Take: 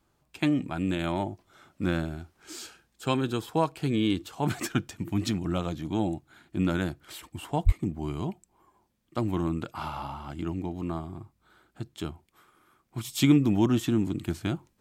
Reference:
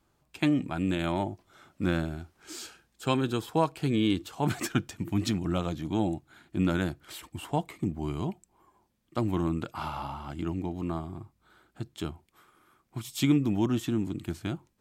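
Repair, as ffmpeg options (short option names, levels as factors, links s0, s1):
-filter_complex "[0:a]asplit=3[s0][s1][s2];[s0]afade=t=out:st=7.65:d=0.02[s3];[s1]highpass=f=140:w=0.5412,highpass=f=140:w=1.3066,afade=t=in:st=7.65:d=0.02,afade=t=out:st=7.77:d=0.02[s4];[s2]afade=t=in:st=7.77:d=0.02[s5];[s3][s4][s5]amix=inputs=3:normalize=0,asetnsamples=n=441:p=0,asendcmd='12.98 volume volume -3.5dB',volume=1"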